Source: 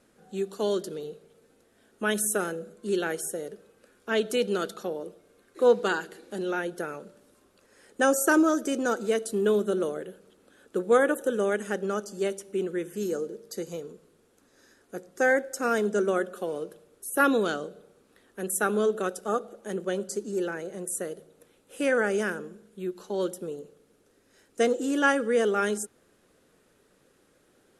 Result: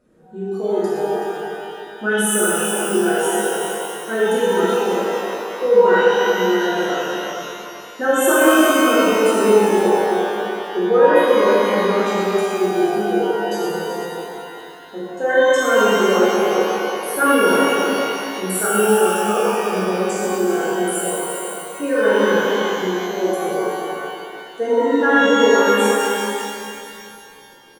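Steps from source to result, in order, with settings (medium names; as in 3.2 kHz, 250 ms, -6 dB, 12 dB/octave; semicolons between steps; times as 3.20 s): spectral contrast enhancement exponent 1.7; delay 377 ms -8.5 dB; pitch-shifted reverb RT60 2.5 s, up +12 st, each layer -8 dB, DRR -10 dB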